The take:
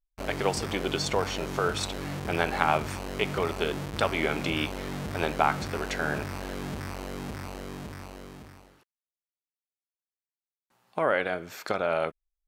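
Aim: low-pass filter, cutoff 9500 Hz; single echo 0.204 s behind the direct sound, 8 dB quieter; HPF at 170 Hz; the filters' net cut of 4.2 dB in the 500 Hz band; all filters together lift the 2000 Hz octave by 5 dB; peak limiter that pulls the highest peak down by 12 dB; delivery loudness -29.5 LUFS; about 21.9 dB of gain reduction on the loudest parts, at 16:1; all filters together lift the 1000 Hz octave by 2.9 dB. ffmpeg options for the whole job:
-af "highpass=170,lowpass=9.5k,equalizer=f=500:t=o:g=-7,equalizer=f=1k:t=o:g=4.5,equalizer=f=2k:t=o:g=5.5,acompressor=threshold=-37dB:ratio=16,alimiter=level_in=8.5dB:limit=-24dB:level=0:latency=1,volume=-8.5dB,aecho=1:1:204:0.398,volume=15dB"

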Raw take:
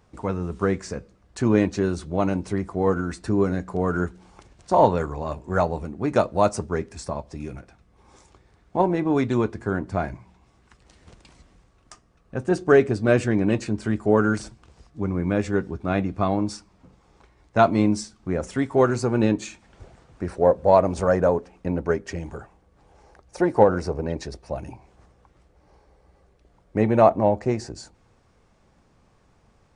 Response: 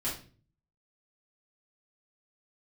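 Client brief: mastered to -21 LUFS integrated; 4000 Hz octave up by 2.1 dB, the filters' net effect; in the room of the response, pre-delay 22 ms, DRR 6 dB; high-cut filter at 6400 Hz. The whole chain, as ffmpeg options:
-filter_complex "[0:a]lowpass=6.4k,equalizer=f=4k:t=o:g=3.5,asplit=2[a][b];[1:a]atrim=start_sample=2205,adelay=22[c];[b][c]afir=irnorm=-1:irlink=0,volume=-10.5dB[d];[a][d]amix=inputs=2:normalize=0,volume=1dB"

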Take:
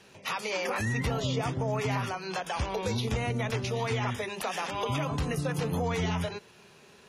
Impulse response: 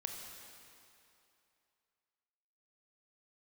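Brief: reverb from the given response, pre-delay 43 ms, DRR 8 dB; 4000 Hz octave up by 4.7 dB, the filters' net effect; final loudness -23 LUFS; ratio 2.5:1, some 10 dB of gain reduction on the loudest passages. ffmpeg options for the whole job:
-filter_complex "[0:a]equalizer=f=4k:t=o:g=6,acompressor=threshold=-41dB:ratio=2.5,asplit=2[a][b];[1:a]atrim=start_sample=2205,adelay=43[c];[b][c]afir=irnorm=-1:irlink=0,volume=-7.5dB[d];[a][d]amix=inputs=2:normalize=0,volume=16dB"

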